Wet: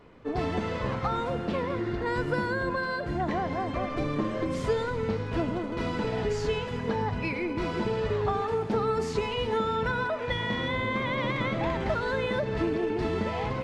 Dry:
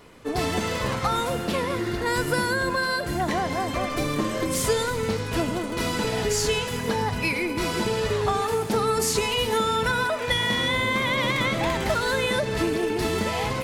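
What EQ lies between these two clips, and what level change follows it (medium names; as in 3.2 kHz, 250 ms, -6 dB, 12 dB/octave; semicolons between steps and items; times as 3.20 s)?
tape spacing loss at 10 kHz 26 dB; -2.0 dB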